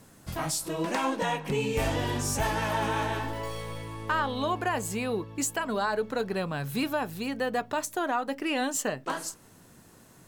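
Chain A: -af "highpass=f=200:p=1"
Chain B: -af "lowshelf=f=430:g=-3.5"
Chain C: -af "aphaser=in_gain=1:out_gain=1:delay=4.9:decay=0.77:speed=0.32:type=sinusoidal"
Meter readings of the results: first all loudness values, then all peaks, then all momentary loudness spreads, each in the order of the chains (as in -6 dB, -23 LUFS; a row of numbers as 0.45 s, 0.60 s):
-31.0 LUFS, -31.0 LUFS, -25.5 LUFS; -17.0 dBFS, -17.0 dBFS, -8.0 dBFS; 7 LU, 7 LU, 10 LU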